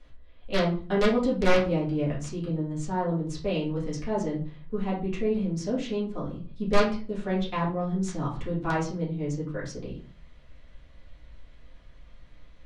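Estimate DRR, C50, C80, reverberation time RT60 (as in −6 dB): −8.0 dB, 7.0 dB, 13.0 dB, 0.40 s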